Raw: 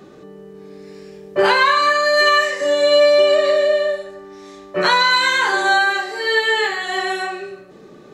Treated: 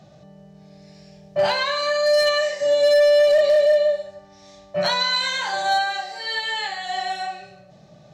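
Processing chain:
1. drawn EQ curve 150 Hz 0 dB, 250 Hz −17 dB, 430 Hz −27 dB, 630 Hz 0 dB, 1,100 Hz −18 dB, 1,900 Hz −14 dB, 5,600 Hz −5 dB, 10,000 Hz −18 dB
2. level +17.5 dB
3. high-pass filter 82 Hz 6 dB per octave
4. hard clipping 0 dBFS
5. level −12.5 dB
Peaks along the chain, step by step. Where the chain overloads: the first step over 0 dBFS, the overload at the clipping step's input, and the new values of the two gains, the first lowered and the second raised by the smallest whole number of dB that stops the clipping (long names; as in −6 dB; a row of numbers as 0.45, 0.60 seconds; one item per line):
−10.5, +7.0, +7.0, 0.0, −12.5 dBFS
step 2, 7.0 dB
step 2 +10.5 dB, step 5 −5.5 dB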